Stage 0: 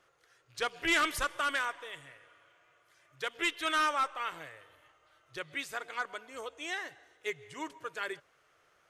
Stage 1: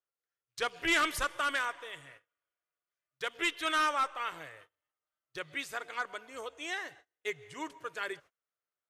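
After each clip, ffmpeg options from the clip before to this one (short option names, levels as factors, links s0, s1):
-af "agate=range=0.0316:threshold=0.002:ratio=16:detection=peak"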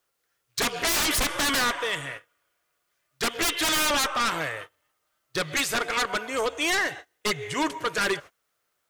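-af "aeval=exprs='0.0944*sin(PI/2*5.01*val(0)/0.0944)':c=same"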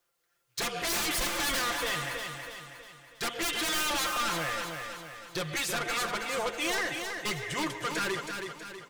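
-af "aecho=1:1:5.8:0.64,asoftclip=type=tanh:threshold=0.0531,aecho=1:1:322|644|966|1288|1610|1932:0.501|0.241|0.115|0.0554|0.0266|0.0128,volume=0.75"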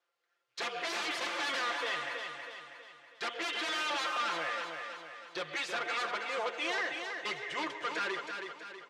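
-af "highpass=400,lowpass=3900,volume=0.794"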